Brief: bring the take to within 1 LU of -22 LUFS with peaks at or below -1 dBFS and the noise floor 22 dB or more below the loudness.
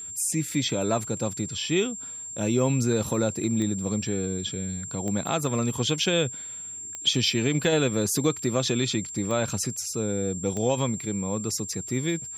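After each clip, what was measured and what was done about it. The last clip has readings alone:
clicks found 5; steady tone 7.4 kHz; tone level -35 dBFS; loudness -26.5 LUFS; peak level -11.0 dBFS; loudness target -22.0 LUFS
-> de-click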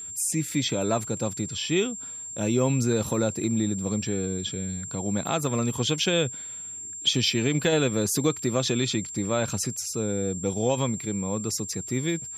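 clicks found 0; steady tone 7.4 kHz; tone level -35 dBFS
-> band-stop 7.4 kHz, Q 30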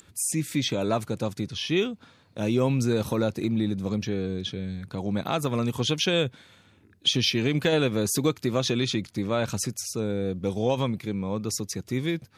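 steady tone not found; loudness -27.0 LUFS; peak level -12.0 dBFS; loudness target -22.0 LUFS
-> trim +5 dB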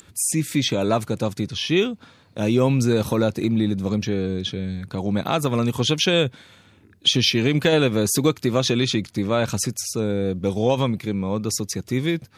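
loudness -22.0 LUFS; peak level -7.0 dBFS; noise floor -54 dBFS

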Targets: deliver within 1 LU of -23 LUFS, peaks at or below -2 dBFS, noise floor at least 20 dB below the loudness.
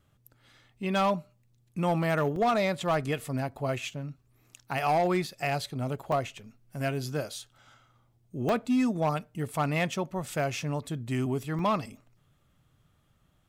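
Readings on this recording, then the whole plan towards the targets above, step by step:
clipped samples 0.9%; clipping level -20.0 dBFS; dropouts 5; longest dropout 2.2 ms; loudness -30.0 LUFS; peak level -20.0 dBFS; loudness target -23.0 LUFS
-> clip repair -20 dBFS; interpolate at 2.36/5.27/6.12/8.49/11.59 s, 2.2 ms; trim +7 dB

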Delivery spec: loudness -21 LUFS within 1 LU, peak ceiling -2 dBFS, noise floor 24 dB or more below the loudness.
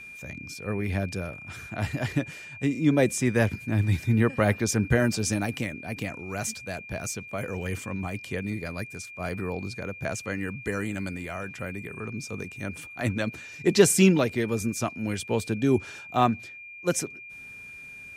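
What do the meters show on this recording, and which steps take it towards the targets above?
steady tone 2.4 kHz; tone level -41 dBFS; loudness -27.5 LUFS; peak level -5.5 dBFS; loudness target -21.0 LUFS
-> band-stop 2.4 kHz, Q 30; trim +6.5 dB; peak limiter -2 dBFS

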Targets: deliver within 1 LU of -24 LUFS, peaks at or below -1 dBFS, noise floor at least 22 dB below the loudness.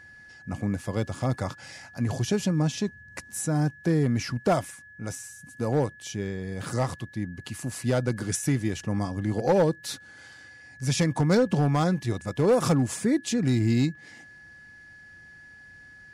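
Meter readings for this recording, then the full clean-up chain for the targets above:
clipped samples 0.6%; clipping level -15.5 dBFS; steady tone 1.7 kHz; tone level -47 dBFS; loudness -27.0 LUFS; peak level -15.5 dBFS; loudness target -24.0 LUFS
-> clip repair -15.5 dBFS; band-stop 1.7 kHz, Q 30; trim +3 dB

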